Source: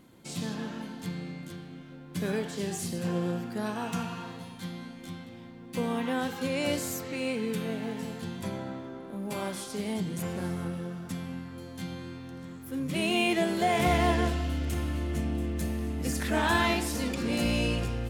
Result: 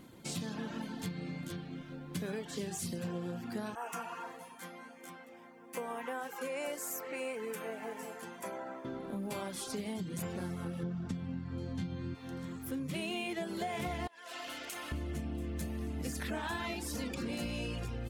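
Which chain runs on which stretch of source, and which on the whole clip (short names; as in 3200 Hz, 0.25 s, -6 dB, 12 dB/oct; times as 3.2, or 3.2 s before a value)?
3.75–8.85 HPF 520 Hz + bell 3900 Hz -15 dB 0.92 oct
10.83–12.15 LPF 6300 Hz + low shelf 270 Hz +12 dB
14.07–14.92 HPF 730 Hz + compressor 10:1, threshold -39 dBFS
whole clip: reverb removal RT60 0.51 s; compressor 6:1, threshold -38 dBFS; gain +2.5 dB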